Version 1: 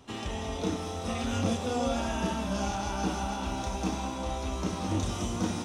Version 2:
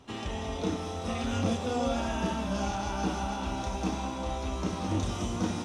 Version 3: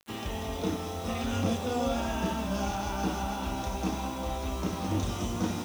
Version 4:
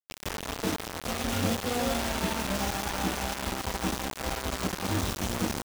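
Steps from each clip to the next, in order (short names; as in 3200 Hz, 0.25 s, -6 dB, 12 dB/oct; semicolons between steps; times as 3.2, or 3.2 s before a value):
high shelf 8900 Hz -8.5 dB
bit-crush 8-bit
bit-crush 5-bit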